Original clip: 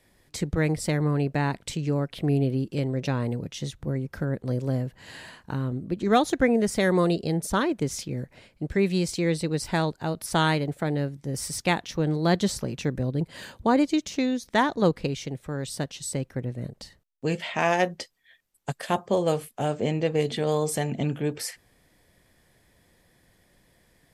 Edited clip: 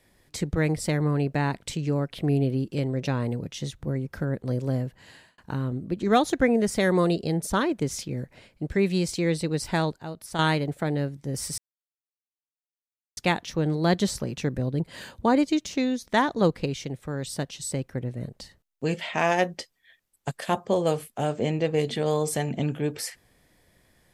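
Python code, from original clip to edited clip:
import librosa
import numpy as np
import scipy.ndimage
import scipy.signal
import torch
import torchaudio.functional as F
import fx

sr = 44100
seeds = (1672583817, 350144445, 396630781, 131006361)

y = fx.edit(x, sr, fx.fade_out_span(start_s=4.84, length_s=0.54),
    fx.clip_gain(start_s=9.98, length_s=0.41, db=-7.5),
    fx.insert_silence(at_s=11.58, length_s=1.59), tone=tone)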